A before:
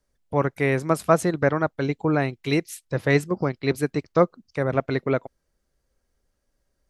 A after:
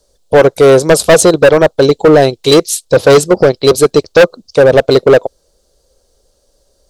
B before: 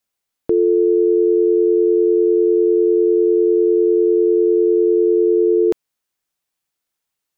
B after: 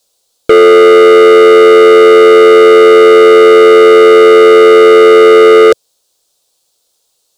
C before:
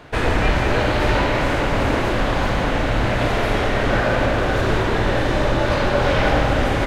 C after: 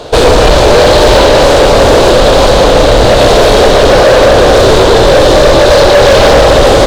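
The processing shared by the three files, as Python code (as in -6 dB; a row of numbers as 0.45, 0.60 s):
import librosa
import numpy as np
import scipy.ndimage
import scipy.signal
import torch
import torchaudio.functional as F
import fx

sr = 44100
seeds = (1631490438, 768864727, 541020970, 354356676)

y = fx.graphic_eq(x, sr, hz=(125, 250, 500, 2000, 4000, 8000), db=(-4, -5, 11, -12, 10, 7))
y = np.clip(y, -10.0 ** (-16.5 / 20.0), 10.0 ** (-16.5 / 20.0))
y = librosa.util.normalize(y) * 10.0 ** (-1.5 / 20.0)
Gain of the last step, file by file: +15.0, +15.0, +15.0 dB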